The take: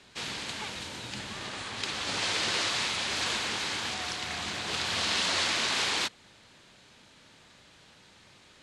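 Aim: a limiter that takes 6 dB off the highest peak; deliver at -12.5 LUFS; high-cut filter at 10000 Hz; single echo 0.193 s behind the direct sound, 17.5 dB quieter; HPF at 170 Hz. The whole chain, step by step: HPF 170 Hz; LPF 10000 Hz; limiter -22 dBFS; echo 0.193 s -17.5 dB; gain +19 dB

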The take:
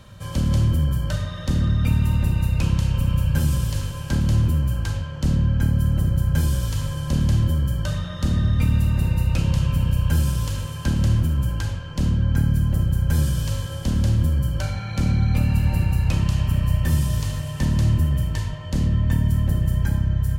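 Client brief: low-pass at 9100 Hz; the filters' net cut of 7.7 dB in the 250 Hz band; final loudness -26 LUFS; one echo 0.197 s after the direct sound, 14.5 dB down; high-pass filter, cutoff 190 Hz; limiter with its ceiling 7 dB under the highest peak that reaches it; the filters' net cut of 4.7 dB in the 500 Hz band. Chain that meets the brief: HPF 190 Hz; LPF 9100 Hz; bell 250 Hz -6.5 dB; bell 500 Hz -4 dB; limiter -24.5 dBFS; echo 0.197 s -14.5 dB; gain +8 dB

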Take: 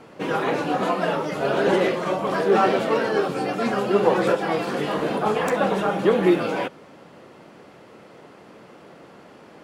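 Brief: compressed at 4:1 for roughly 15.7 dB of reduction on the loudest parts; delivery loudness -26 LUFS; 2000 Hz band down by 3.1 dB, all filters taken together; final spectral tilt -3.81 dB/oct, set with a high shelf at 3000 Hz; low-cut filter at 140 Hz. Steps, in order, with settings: HPF 140 Hz; bell 2000 Hz -7 dB; high shelf 3000 Hz +7.5 dB; compressor 4:1, threshold -33 dBFS; gain +8.5 dB

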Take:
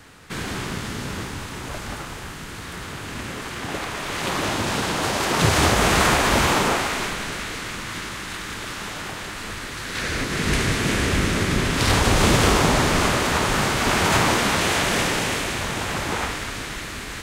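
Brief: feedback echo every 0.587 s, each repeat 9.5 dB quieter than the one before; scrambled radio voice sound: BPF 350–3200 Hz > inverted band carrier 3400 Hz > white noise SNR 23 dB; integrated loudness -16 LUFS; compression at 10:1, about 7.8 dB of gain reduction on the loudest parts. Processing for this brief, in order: compressor 10:1, threshold -21 dBFS; BPF 350–3200 Hz; feedback echo 0.587 s, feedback 33%, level -9.5 dB; inverted band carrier 3400 Hz; white noise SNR 23 dB; gain +11.5 dB

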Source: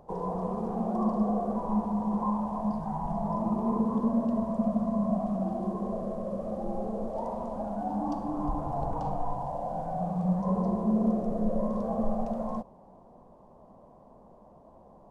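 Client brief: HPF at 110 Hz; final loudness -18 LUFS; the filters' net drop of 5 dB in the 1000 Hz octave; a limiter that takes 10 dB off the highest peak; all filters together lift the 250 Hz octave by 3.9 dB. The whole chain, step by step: HPF 110 Hz; bell 250 Hz +5.5 dB; bell 1000 Hz -7.5 dB; gain +13.5 dB; limiter -9.5 dBFS

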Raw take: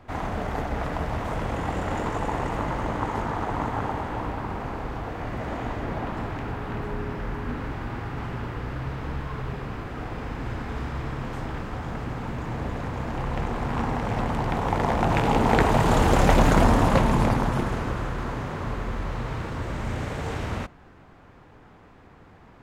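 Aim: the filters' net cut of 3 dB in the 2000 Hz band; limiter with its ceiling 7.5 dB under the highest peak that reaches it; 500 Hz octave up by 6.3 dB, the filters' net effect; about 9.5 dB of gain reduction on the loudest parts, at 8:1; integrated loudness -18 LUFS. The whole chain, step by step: bell 500 Hz +8 dB; bell 2000 Hz -4.5 dB; compressor 8:1, threshold -21 dBFS; gain +11 dB; limiter -6 dBFS

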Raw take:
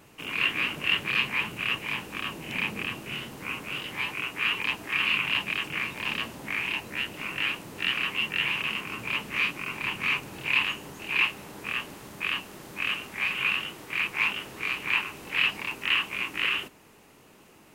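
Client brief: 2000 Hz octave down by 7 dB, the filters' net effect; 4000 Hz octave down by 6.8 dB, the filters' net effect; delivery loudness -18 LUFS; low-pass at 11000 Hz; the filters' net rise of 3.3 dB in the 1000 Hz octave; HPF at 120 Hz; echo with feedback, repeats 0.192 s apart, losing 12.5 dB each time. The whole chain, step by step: HPF 120 Hz; LPF 11000 Hz; bell 1000 Hz +6.5 dB; bell 2000 Hz -8 dB; bell 4000 Hz -6.5 dB; feedback echo 0.192 s, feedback 24%, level -12.5 dB; gain +15.5 dB

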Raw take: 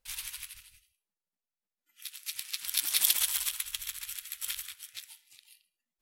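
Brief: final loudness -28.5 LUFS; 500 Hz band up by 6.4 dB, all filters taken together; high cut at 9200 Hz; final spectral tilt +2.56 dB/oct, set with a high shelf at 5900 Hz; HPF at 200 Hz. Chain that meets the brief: HPF 200 Hz; LPF 9200 Hz; bell 500 Hz +8 dB; high shelf 5900 Hz -4 dB; gain +7.5 dB

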